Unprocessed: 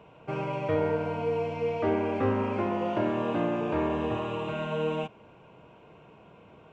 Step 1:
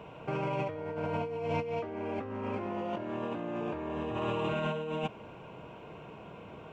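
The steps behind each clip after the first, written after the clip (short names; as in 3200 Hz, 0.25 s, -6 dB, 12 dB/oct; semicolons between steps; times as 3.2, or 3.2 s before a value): negative-ratio compressor -35 dBFS, ratio -1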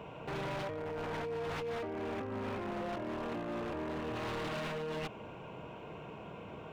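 in parallel at 0 dB: limiter -31 dBFS, peak gain reduction 11 dB; on the sum: wavefolder -27.5 dBFS; gain -5.5 dB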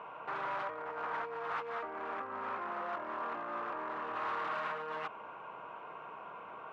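band-pass 1200 Hz, Q 2.5; gain +9 dB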